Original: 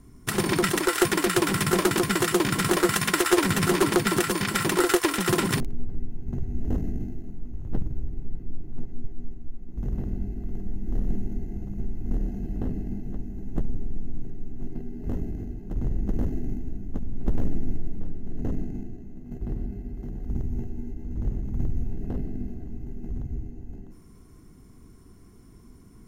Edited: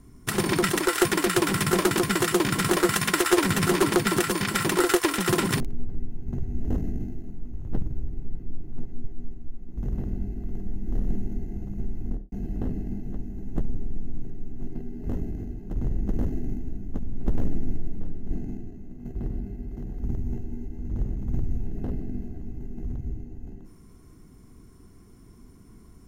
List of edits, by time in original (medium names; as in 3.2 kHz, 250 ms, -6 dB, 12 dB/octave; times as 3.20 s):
12.01–12.32 s: studio fade out
18.31–18.57 s: delete